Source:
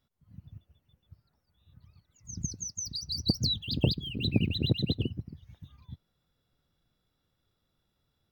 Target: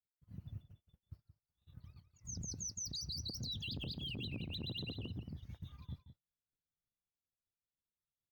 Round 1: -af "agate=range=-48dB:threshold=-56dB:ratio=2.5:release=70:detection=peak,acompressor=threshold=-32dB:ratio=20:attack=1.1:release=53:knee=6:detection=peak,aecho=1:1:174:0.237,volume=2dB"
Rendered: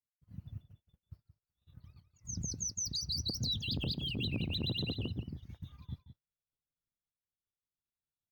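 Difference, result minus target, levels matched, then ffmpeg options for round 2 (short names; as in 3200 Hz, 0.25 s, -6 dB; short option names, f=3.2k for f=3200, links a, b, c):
compressor: peak gain reduction -8 dB
-af "agate=range=-48dB:threshold=-56dB:ratio=2.5:release=70:detection=peak,acompressor=threshold=-40.5dB:ratio=20:attack=1.1:release=53:knee=6:detection=peak,aecho=1:1:174:0.237,volume=2dB"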